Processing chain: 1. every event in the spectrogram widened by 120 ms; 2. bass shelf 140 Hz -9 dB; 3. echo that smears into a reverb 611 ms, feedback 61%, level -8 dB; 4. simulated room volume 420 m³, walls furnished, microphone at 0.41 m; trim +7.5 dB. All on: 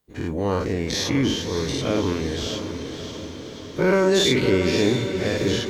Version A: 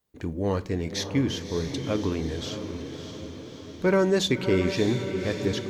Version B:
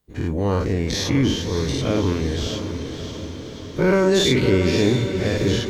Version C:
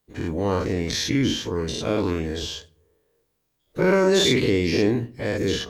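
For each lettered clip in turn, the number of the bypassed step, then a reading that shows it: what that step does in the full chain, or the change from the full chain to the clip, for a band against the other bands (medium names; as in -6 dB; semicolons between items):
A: 1, 125 Hz band +2.5 dB; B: 2, 125 Hz band +5.0 dB; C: 3, echo-to-direct -5.0 dB to -14.0 dB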